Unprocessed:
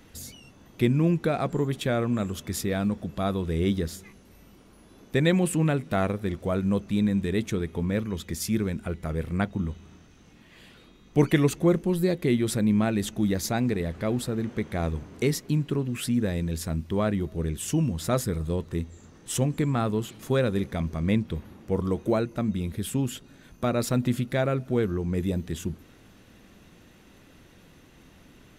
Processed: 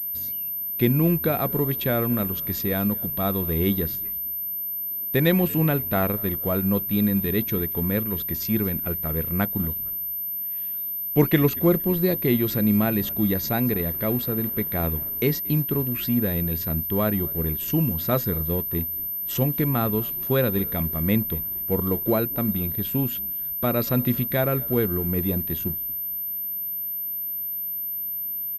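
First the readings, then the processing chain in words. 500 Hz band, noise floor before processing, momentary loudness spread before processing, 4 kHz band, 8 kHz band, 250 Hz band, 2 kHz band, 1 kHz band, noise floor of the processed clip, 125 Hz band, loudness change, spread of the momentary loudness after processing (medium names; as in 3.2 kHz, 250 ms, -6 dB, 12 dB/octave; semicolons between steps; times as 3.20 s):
+2.0 dB, -54 dBFS, 9 LU, +0.5 dB, -7.5 dB, +2.0 dB, +2.0 dB, +2.0 dB, -30 dBFS, +2.0 dB, +3.5 dB, 6 LU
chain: companding laws mixed up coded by A; frequency-shifting echo 231 ms, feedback 35%, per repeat -71 Hz, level -23 dB; class-D stage that switches slowly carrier 13 kHz; trim +2.5 dB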